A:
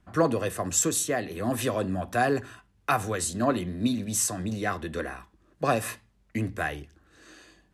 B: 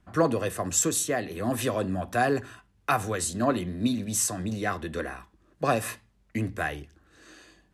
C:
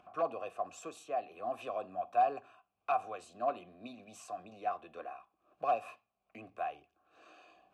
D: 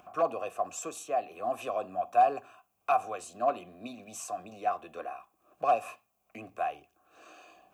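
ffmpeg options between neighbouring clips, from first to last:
-af anull
-filter_complex "[0:a]aeval=exprs='0.188*(abs(mod(val(0)/0.188+3,4)-2)-1)':c=same,asplit=3[a][b][c];[a]bandpass=f=730:t=q:w=8,volume=0dB[d];[b]bandpass=f=1.09k:t=q:w=8,volume=-6dB[e];[c]bandpass=f=2.44k:t=q:w=8,volume=-9dB[f];[d][e][f]amix=inputs=3:normalize=0,acompressor=mode=upward:threshold=-50dB:ratio=2.5"
-af "aexciter=amount=3.4:drive=2.2:freq=5.8k,volume=5.5dB"

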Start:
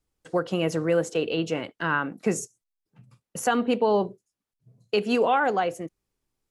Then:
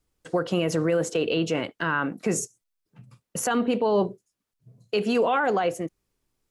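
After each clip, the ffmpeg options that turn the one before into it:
-af "bandreject=f=810:w=21,alimiter=limit=-19dB:level=0:latency=1:release=27,volume=4dB"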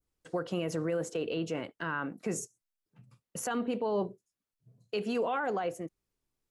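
-af "adynamicequalizer=threshold=0.00562:dfrequency=3500:dqfactor=0.85:tfrequency=3500:tqfactor=0.85:attack=5:release=100:ratio=0.375:range=2:mode=cutabove:tftype=bell,volume=-8.5dB"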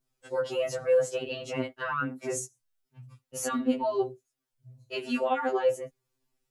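-af "afftfilt=real='re*2.45*eq(mod(b,6),0)':imag='im*2.45*eq(mod(b,6),0)':win_size=2048:overlap=0.75,volume=6.5dB"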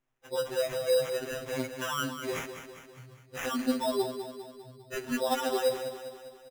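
-af "acrusher=samples=10:mix=1:aa=0.000001,aecho=1:1:200|400|600|800|1000|1200:0.335|0.181|0.0977|0.0527|0.0285|0.0154,volume=-2dB"

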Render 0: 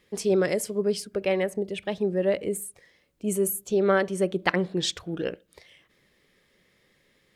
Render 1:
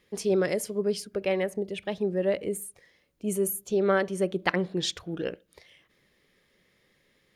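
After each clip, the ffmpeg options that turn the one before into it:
-af "bandreject=f=7.9k:w=12,volume=-2dB"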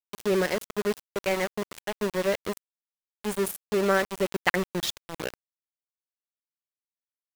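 -filter_complex "[0:a]adynamicequalizer=threshold=0.00794:dfrequency=2000:dqfactor=1.1:tfrequency=2000:tqfactor=1.1:attack=5:release=100:ratio=0.375:range=2:mode=boostabove:tftype=bell,acrossover=split=2100[a][b];[b]acompressor=mode=upward:threshold=-40dB:ratio=2.5[c];[a][c]amix=inputs=2:normalize=0,aeval=exprs='val(0)*gte(abs(val(0)),0.0473)':c=same"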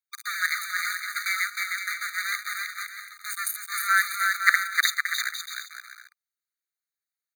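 -filter_complex "[0:a]aecho=1:1:310|511.5|642.5|727.6|782.9:0.631|0.398|0.251|0.158|0.1,asplit=2[a][b];[b]acrusher=bits=5:dc=4:mix=0:aa=0.000001,volume=-8dB[c];[a][c]amix=inputs=2:normalize=0,afftfilt=real='re*eq(mod(floor(b*sr/1024/1200),2),1)':imag='im*eq(mod(floor(b*sr/1024/1200),2),1)':win_size=1024:overlap=0.75,volume=4.5dB"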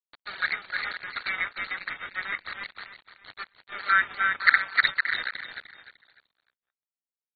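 -af "aresample=11025,aeval=exprs='sgn(val(0))*max(abs(val(0))-0.0266,0)':c=same,aresample=44100,aecho=1:1:301|602|903:0.299|0.0925|0.0287,volume=1dB" -ar 32000 -c:a aac -b:a 16k

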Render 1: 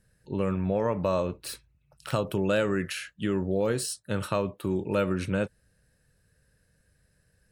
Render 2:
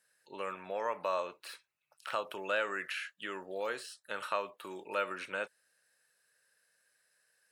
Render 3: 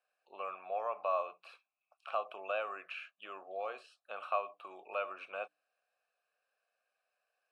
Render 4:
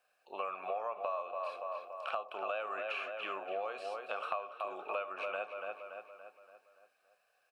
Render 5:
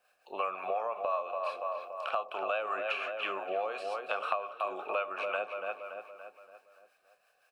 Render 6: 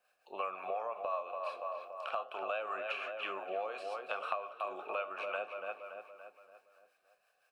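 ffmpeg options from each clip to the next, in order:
-filter_complex "[0:a]acrossover=split=3200[a][b];[b]acompressor=threshold=-52dB:ratio=4:attack=1:release=60[c];[a][c]amix=inputs=2:normalize=0,highpass=880"
-filter_complex "[0:a]asplit=3[a][b][c];[a]bandpass=f=730:t=q:w=8,volume=0dB[d];[b]bandpass=f=1.09k:t=q:w=8,volume=-6dB[e];[c]bandpass=f=2.44k:t=q:w=8,volume=-9dB[f];[d][e][f]amix=inputs=3:normalize=0,bandreject=f=60:t=h:w=6,bandreject=f=120:t=h:w=6,bandreject=f=180:t=h:w=6,bandreject=f=240:t=h:w=6,bandreject=f=300:t=h:w=6,volume=8dB"
-filter_complex "[0:a]asplit=2[a][b];[b]adelay=285,lowpass=f=3.8k:p=1,volume=-9dB,asplit=2[c][d];[d]adelay=285,lowpass=f=3.8k:p=1,volume=0.51,asplit=2[e][f];[f]adelay=285,lowpass=f=3.8k:p=1,volume=0.51,asplit=2[g][h];[h]adelay=285,lowpass=f=3.8k:p=1,volume=0.51,asplit=2[i][j];[j]adelay=285,lowpass=f=3.8k:p=1,volume=0.51,asplit=2[k][l];[l]adelay=285,lowpass=f=3.8k:p=1,volume=0.51[m];[c][e][g][i][k][m]amix=inputs=6:normalize=0[n];[a][n]amix=inputs=2:normalize=0,acompressor=threshold=-43dB:ratio=6,volume=8.5dB"
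-filter_complex "[0:a]acrossover=split=560[a][b];[a]aeval=exprs='val(0)*(1-0.5/2+0.5/2*cos(2*PI*5.7*n/s))':c=same[c];[b]aeval=exprs='val(0)*(1-0.5/2-0.5/2*cos(2*PI*5.7*n/s))':c=same[d];[c][d]amix=inputs=2:normalize=0,volume=7dB"
-af "flanger=delay=3.1:depth=9.2:regen=-86:speed=0.32:shape=triangular"

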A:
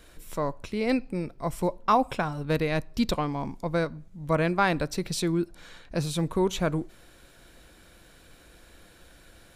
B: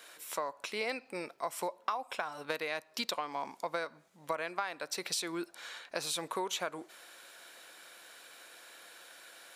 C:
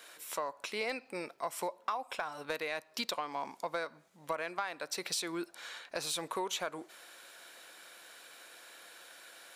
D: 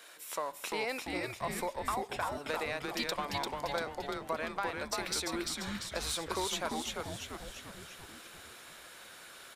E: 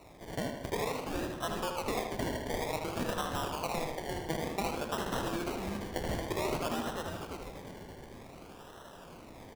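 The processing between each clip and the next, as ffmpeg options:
-af "highpass=710,acompressor=threshold=-35dB:ratio=16,volume=4dB"
-af "asoftclip=type=tanh:threshold=-21dB"
-filter_complex "[0:a]asplit=9[a][b][c][d][e][f][g][h][i];[b]adelay=344,afreqshift=-140,volume=-3dB[j];[c]adelay=688,afreqshift=-280,volume=-8dB[k];[d]adelay=1032,afreqshift=-420,volume=-13.1dB[l];[e]adelay=1376,afreqshift=-560,volume=-18.1dB[m];[f]adelay=1720,afreqshift=-700,volume=-23.1dB[n];[g]adelay=2064,afreqshift=-840,volume=-28.2dB[o];[h]adelay=2408,afreqshift=-980,volume=-33.2dB[p];[i]adelay=2752,afreqshift=-1120,volume=-38.3dB[q];[a][j][k][l][m][n][o][p][q]amix=inputs=9:normalize=0"
-filter_complex "[0:a]acrusher=samples=27:mix=1:aa=0.000001:lfo=1:lforange=16.2:lforate=0.54,asplit=2[a][b];[b]adelay=78,lowpass=f=4.7k:p=1,volume=-5dB,asplit=2[c][d];[d]adelay=78,lowpass=f=4.7k:p=1,volume=0.53,asplit=2[e][f];[f]adelay=78,lowpass=f=4.7k:p=1,volume=0.53,asplit=2[g][h];[h]adelay=78,lowpass=f=4.7k:p=1,volume=0.53,asplit=2[i][j];[j]adelay=78,lowpass=f=4.7k:p=1,volume=0.53,asplit=2[k][l];[l]adelay=78,lowpass=f=4.7k:p=1,volume=0.53,asplit=2[m][n];[n]adelay=78,lowpass=f=4.7k:p=1,volume=0.53[o];[a][c][e][g][i][k][m][o]amix=inputs=8:normalize=0"

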